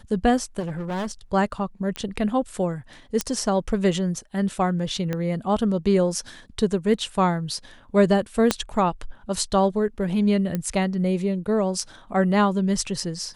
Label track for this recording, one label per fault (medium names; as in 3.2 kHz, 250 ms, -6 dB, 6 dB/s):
0.590000	1.120000	clipped -25 dBFS
1.960000	1.960000	pop -14 dBFS
3.210000	3.210000	pop -7 dBFS
5.130000	5.130000	pop -14 dBFS
8.510000	8.510000	pop -4 dBFS
10.550000	10.550000	pop -13 dBFS